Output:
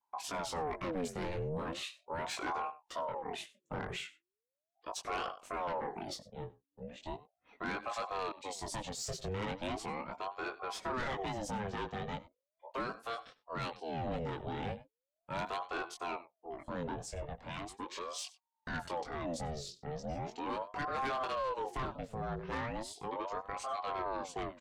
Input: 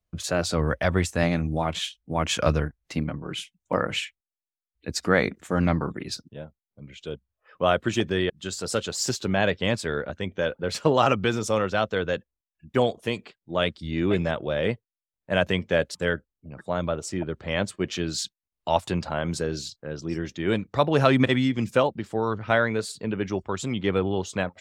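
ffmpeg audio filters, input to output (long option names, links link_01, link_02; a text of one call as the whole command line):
ffmpeg -i in.wav -filter_complex "[0:a]aecho=1:1:95:0.0891,acrossover=split=290|970[link_01][link_02][link_03];[link_01]acontrast=39[link_04];[link_04][link_02][link_03]amix=inputs=3:normalize=0,flanger=delay=19.5:depth=2.2:speed=1.4,asoftclip=type=tanh:threshold=-21.5dB,asettb=1/sr,asplit=3[link_05][link_06][link_07];[link_05]atrim=end=16.994[link_08];[link_06]atrim=start=16.99:end=18.19,asetpts=PTS-STARTPTS,afade=type=in:duration=0.004:curve=qsin,afade=type=out:start_time=1.196:duration=0.004:curve=qsin,highpass=200[link_09];[link_07]atrim=start=18.186[link_10];[link_08][link_09]acrossfade=duration=0.004:curve1=hsin:curve2=qsin[link_11];[link_11][link_10]acrossfade=duration=0.004:curve1=qsin:curve2=hsin,alimiter=level_in=3dB:limit=-24dB:level=0:latency=1:release=279,volume=-3dB,aeval=exprs='val(0)*sin(2*PI*600*n/s+600*0.55/0.38*sin(2*PI*0.38*n/s))':channel_layout=same,volume=-2.5dB" out.wav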